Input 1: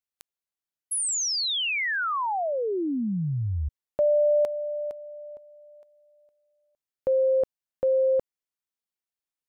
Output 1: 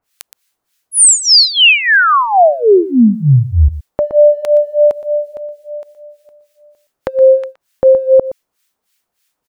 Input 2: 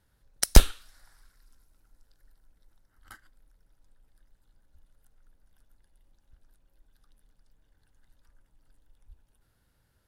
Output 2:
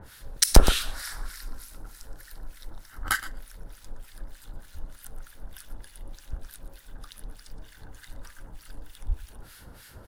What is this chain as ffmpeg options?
ffmpeg -i in.wav -filter_complex "[0:a]lowshelf=frequency=330:gain=-4,acompressor=threshold=-34dB:ratio=3:attack=5:release=227:detection=peak,acrossover=split=1300[link_01][link_02];[link_01]aeval=exprs='val(0)*(1-1/2+1/2*cos(2*PI*3.3*n/s))':channel_layout=same[link_03];[link_02]aeval=exprs='val(0)*(1-1/2-1/2*cos(2*PI*3.3*n/s))':channel_layout=same[link_04];[link_03][link_04]amix=inputs=2:normalize=0,aecho=1:1:119:0.158,alimiter=level_in=30dB:limit=-1dB:release=50:level=0:latency=1,volume=-1dB" out.wav

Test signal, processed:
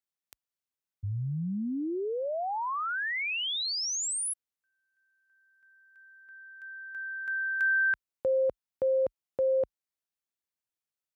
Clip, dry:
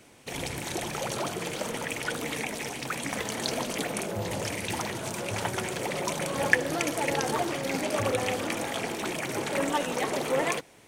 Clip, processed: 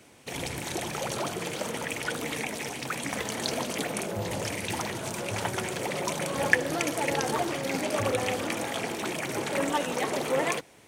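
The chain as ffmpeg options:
ffmpeg -i in.wav -af "highpass=frequency=43:width=0.5412,highpass=frequency=43:width=1.3066" out.wav

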